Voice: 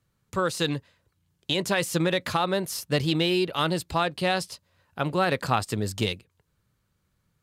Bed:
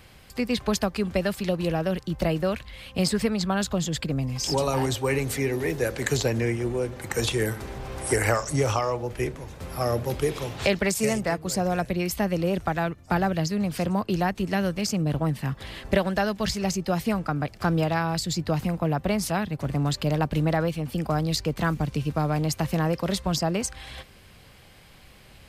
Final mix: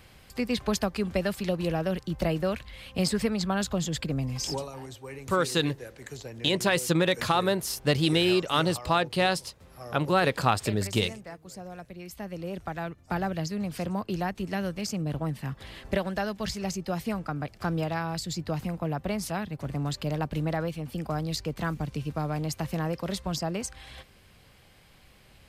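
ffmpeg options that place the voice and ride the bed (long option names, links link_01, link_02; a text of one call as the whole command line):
ffmpeg -i stem1.wav -i stem2.wav -filter_complex "[0:a]adelay=4950,volume=0.5dB[link_01];[1:a]volume=8.5dB,afade=type=out:start_time=4.4:duration=0.29:silence=0.199526,afade=type=in:start_time=11.96:duration=1.29:silence=0.281838[link_02];[link_01][link_02]amix=inputs=2:normalize=0" out.wav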